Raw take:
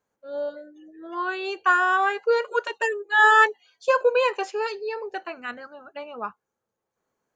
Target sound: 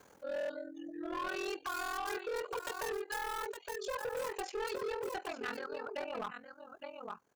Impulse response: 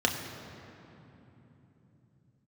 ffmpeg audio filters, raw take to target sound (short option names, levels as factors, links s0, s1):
-filter_complex "[0:a]acrossover=split=820|1500[s0][s1][s2];[s2]aeval=exprs='(mod(25.1*val(0)+1,2)-1)/25.1':c=same[s3];[s0][s1][s3]amix=inputs=3:normalize=0,acompressor=threshold=0.0794:ratio=6,aecho=1:1:865:0.237,asplit=2[s4][s5];[s5]acompressor=mode=upward:threshold=0.0398:ratio=2.5,volume=0.794[s6];[s4][s6]amix=inputs=2:normalize=0,aeval=exprs='val(0)*sin(2*PI*21*n/s)':c=same,alimiter=limit=0.112:level=0:latency=1:release=108,asoftclip=type=hard:threshold=0.0376,volume=0.531"